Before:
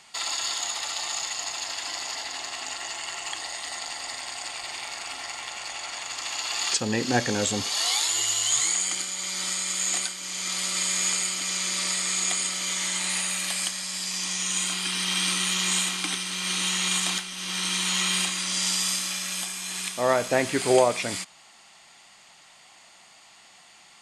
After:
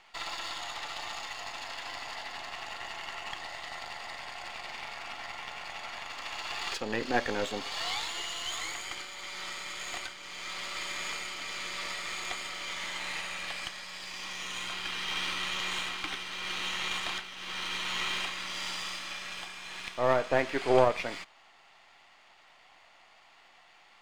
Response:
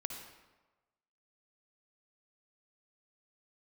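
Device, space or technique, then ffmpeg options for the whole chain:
crystal radio: -af "highpass=360,lowpass=2800,aeval=exprs='if(lt(val(0),0),0.447*val(0),val(0))':c=same"

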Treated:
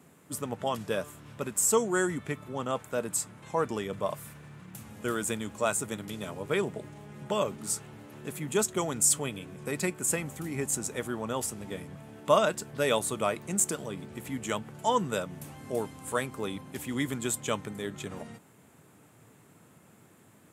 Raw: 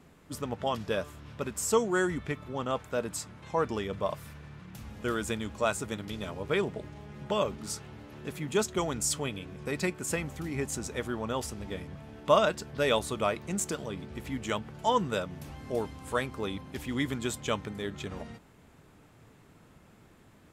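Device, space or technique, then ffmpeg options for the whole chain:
budget condenser microphone: -af "highpass=f=100:w=0.5412,highpass=f=100:w=1.3066,highshelf=f=6500:t=q:w=1.5:g=7"

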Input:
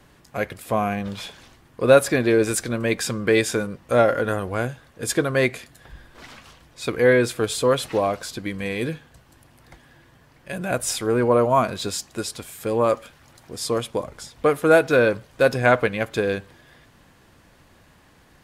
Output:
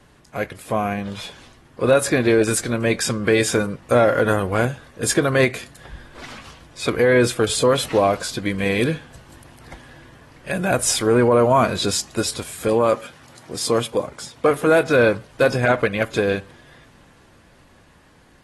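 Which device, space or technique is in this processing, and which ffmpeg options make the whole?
low-bitrate web radio: -filter_complex "[0:a]asettb=1/sr,asplit=3[s0][s1][s2];[s0]atrim=end=12.684[s3];[s1]atrim=start=12.68:end=14.51,asetpts=PTS-STARTPTS,afade=t=in:d=0.004:c=qsin,afade=t=out:st=1.826:d=0.004:c=qsin,highpass=110[s4];[s2]atrim=start=14.506[s5];[s3][s4]acrossfade=d=0.004:c1=hsin:c2=qsin[s6];[s6][s5]acrossfade=d=0.004:c1=qsin:c2=hsin,dynaudnorm=f=150:g=21:m=6.31,alimiter=limit=0.447:level=0:latency=1:release=46" -ar 32000 -c:a aac -b:a 32k

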